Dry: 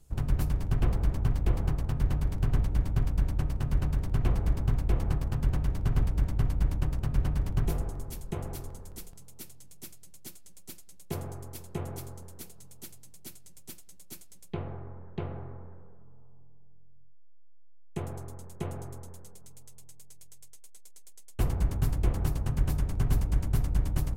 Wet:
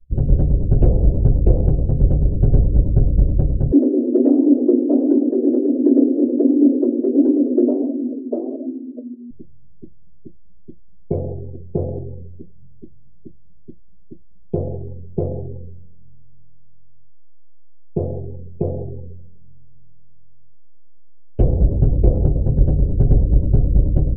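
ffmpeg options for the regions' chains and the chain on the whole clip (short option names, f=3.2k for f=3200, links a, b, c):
-filter_complex "[0:a]asettb=1/sr,asplit=3[a][b][c];[a]atrim=end=3.724[d];[b]atrim=start=3.72:end=9.31,asetpts=PTS-STARTPTS,afade=t=in:d=0.004:c=qsin,afade=t=out:st=5.586:d=0.004:c=qsin,lowpass=f=2.9k:w=0.5412,lowpass=f=2.9k:w=1.3066,flanger=delay=1.4:depth=7.8:regen=44:speed=1.4:shape=sinusoidal,afreqshift=240[e];[c]atrim=start=9.306[f];[d][e]acrossfade=d=0.004:c1=hsin:c2=qsin[g];[g][f]acrossfade=d=0.004:c1=qsin:c2=hsin,acrossover=split=4400[h][i];[i]acompressor=threshold=-59dB:ratio=4:attack=1:release=60[j];[h][j]amix=inputs=2:normalize=0,afftdn=nr=33:nf=-40,lowshelf=f=780:t=q:w=3:g=12"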